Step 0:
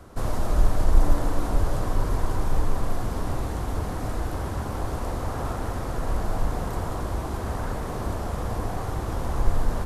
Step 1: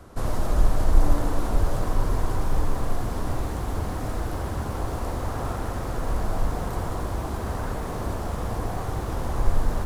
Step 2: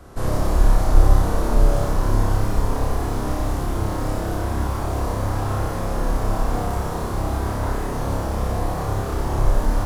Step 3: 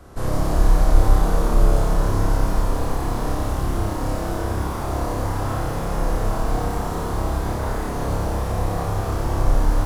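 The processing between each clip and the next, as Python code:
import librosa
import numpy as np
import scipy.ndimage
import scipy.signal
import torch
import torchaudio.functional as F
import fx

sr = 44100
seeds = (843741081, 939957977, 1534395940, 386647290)

y1 = fx.echo_crushed(x, sr, ms=89, feedback_pct=35, bits=7, wet_db=-12.5)
y2 = fx.room_flutter(y1, sr, wall_m=5.1, rt60_s=0.65)
y2 = F.gain(torch.from_numpy(y2), 1.5).numpy()
y3 = fx.echo_split(y2, sr, split_hz=710.0, low_ms=112, high_ms=167, feedback_pct=52, wet_db=-6.0)
y3 = F.gain(torch.from_numpy(y3), -1.0).numpy()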